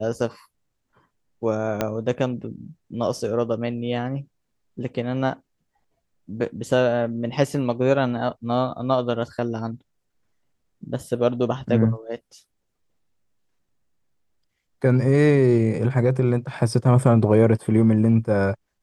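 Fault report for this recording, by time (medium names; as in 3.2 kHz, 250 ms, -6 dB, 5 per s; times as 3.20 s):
1.81 s: pop -8 dBFS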